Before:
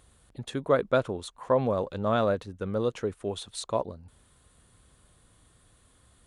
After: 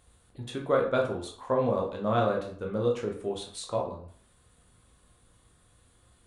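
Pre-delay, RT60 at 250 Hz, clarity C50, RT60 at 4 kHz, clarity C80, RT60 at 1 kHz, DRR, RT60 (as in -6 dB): 12 ms, 0.50 s, 7.5 dB, 0.40 s, 11.5 dB, 0.55 s, 0.0 dB, 0.55 s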